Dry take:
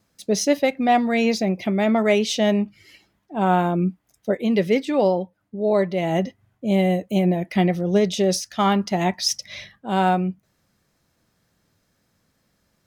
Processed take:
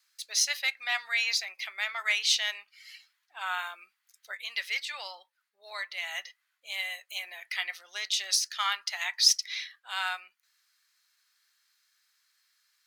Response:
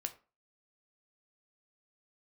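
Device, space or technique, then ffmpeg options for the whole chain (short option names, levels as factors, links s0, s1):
headphones lying on a table: -af "highpass=f=1400:w=0.5412,highpass=f=1400:w=1.3066,equalizer=f=4300:t=o:w=0.28:g=6"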